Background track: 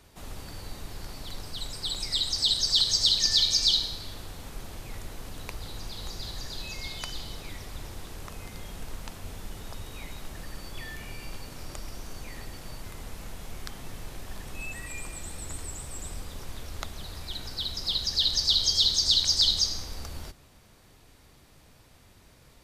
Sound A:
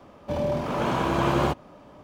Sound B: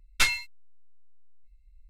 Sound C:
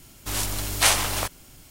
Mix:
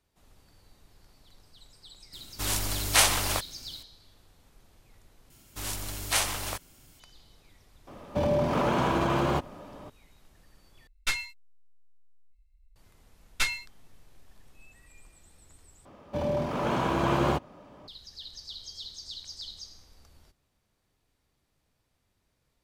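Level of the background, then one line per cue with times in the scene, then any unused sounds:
background track −19 dB
0:02.13: mix in C −2 dB
0:05.30: overwrite with C −7.5 dB
0:07.87: mix in A −16.5 dB + boost into a limiter +19.5 dB
0:10.87: overwrite with B −6 dB
0:13.20: mix in B −4.5 dB
0:15.85: overwrite with A −2.5 dB

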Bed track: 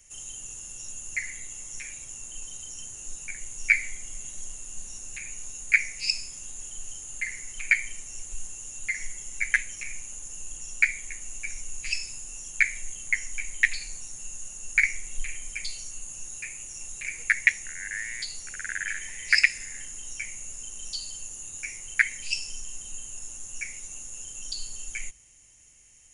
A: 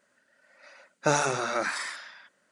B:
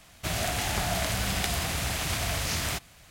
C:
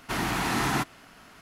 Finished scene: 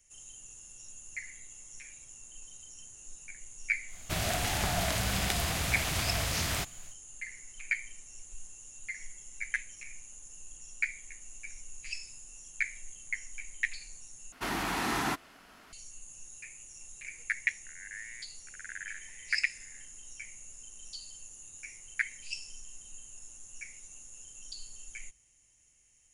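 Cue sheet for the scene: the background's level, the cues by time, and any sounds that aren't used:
bed track −10 dB
0:03.86: mix in B −2 dB, fades 0.10 s
0:14.32: overwrite with C −4 dB + parametric band 120 Hz −8 dB 1.1 octaves
not used: A

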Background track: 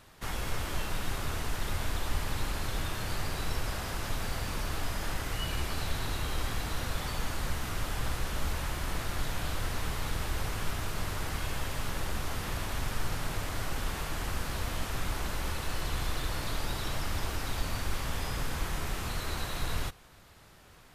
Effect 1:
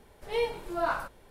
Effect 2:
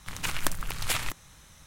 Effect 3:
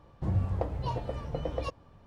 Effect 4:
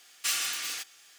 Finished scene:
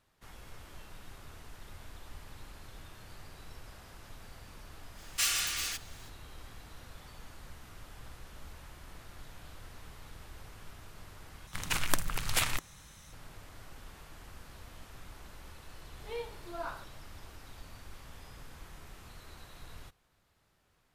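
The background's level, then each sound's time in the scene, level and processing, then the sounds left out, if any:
background track −16.5 dB
0:04.94: mix in 4 −0.5 dB, fades 0.05 s
0:11.47: overwrite with 2 −0.5 dB
0:15.77: mix in 1 −11 dB
not used: 3

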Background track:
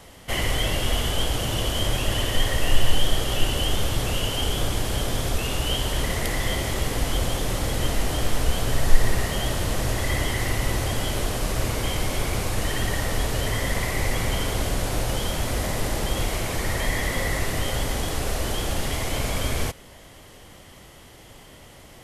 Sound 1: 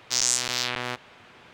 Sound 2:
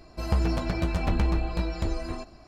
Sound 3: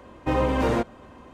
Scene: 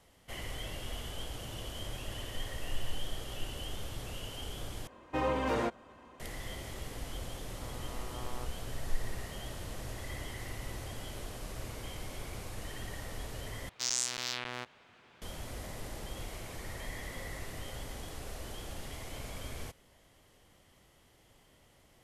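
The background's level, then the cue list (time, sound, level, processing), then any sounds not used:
background track −17 dB
0:04.87: overwrite with 3 −5.5 dB + low-shelf EQ 370 Hz −7.5 dB
0:07.50: mix in 1 −11.5 dB + Butterworth low-pass 1,300 Hz 96 dB per octave
0:13.69: overwrite with 1 −9.5 dB
not used: 2

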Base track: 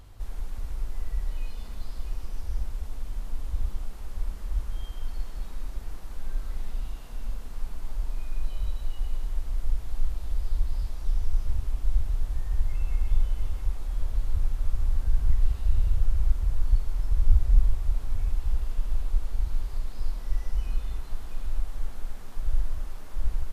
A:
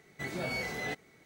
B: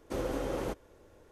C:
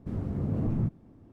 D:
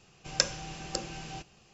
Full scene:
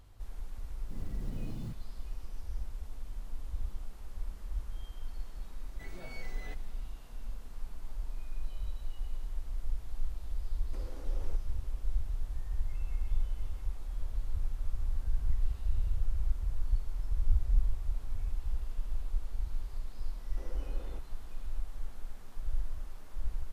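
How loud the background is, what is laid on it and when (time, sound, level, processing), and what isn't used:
base track −8 dB
0:00.84: mix in C −13.5 dB + one scale factor per block 5 bits
0:05.60: mix in A −13.5 dB
0:10.63: mix in B −8 dB + downward compressor, threshold −40 dBFS
0:20.26: mix in B −17.5 dB + low-pass filter 3,200 Hz
not used: D

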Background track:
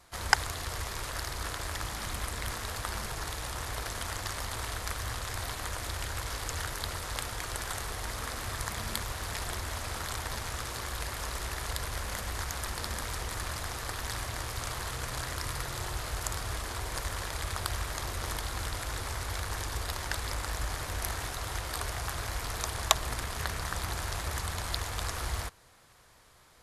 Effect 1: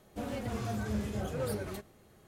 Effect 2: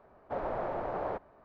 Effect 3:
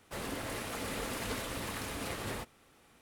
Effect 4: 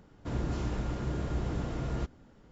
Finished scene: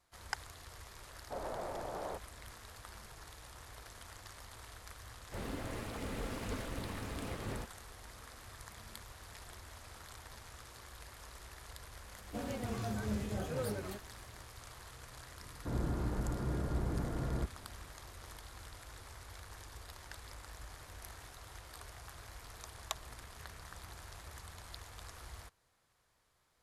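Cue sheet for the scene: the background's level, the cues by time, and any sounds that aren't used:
background track −16 dB
0:01.00: mix in 2 −7 dB
0:05.21: mix in 3 −5.5 dB + spectral tilt −2 dB per octave
0:12.17: mix in 1 −3 dB
0:15.40: mix in 4 −3 dB + inverse Chebyshev low-pass filter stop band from 4,700 Hz, stop band 50 dB

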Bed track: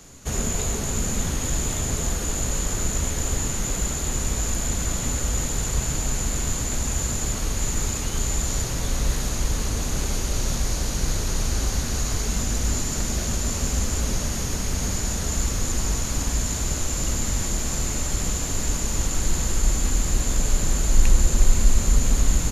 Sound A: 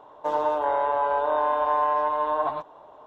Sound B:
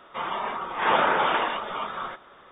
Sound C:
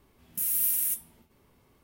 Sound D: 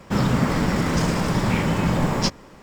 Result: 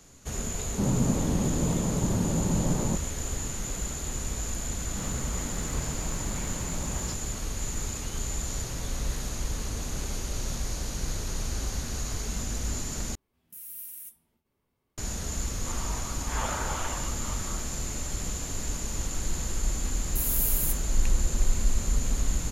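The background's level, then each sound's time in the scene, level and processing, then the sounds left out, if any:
bed track −7.5 dB
0:00.67: mix in D −5 dB + Gaussian smoothing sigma 9.6 samples
0:04.85: mix in D −15.5 dB + brickwall limiter −13.5 dBFS
0:13.15: overwrite with C −15 dB
0:15.50: mix in B −12.5 dB
0:19.78: mix in C −2 dB
not used: A

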